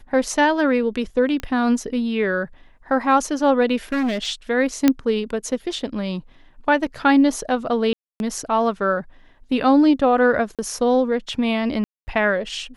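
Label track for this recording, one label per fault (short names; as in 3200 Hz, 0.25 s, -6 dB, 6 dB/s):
1.400000	1.400000	pop -15 dBFS
3.920000	4.280000	clipped -18.5 dBFS
4.880000	4.880000	pop -2 dBFS
7.930000	8.200000	gap 0.271 s
10.550000	10.590000	gap 37 ms
11.840000	12.070000	gap 0.23 s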